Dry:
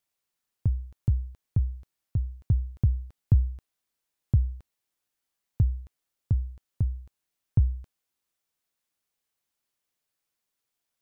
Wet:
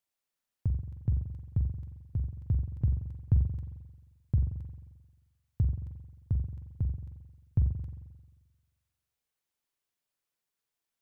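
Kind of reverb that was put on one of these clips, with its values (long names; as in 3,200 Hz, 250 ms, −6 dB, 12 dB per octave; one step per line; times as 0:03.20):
spring reverb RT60 1.3 s, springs 44 ms, chirp 40 ms, DRR 4 dB
level −5 dB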